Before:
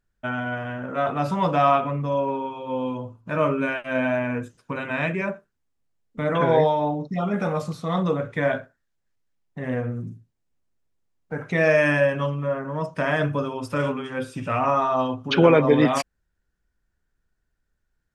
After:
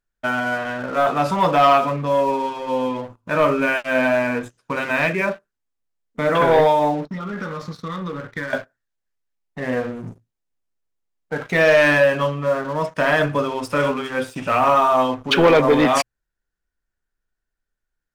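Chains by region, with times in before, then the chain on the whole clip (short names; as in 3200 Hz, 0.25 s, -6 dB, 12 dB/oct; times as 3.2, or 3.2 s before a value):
7.05–8.53 high shelf 7300 Hz -11 dB + compressor, threshold -25 dBFS + fixed phaser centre 2700 Hz, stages 6
whole clip: notches 60/120 Hz; sample leveller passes 2; bell 110 Hz -8 dB 2.8 oct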